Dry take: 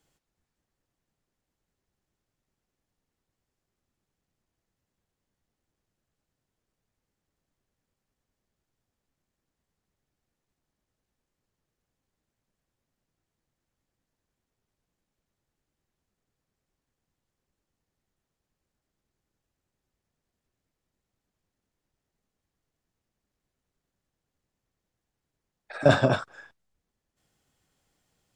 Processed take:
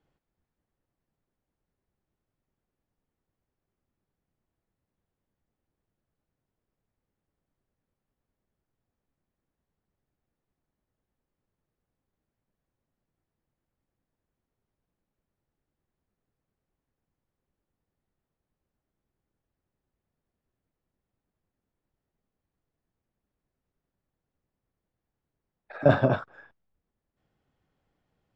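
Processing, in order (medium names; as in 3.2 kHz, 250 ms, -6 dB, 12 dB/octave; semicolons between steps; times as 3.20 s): low-pass 4 kHz 12 dB/octave; treble shelf 2.4 kHz -11.5 dB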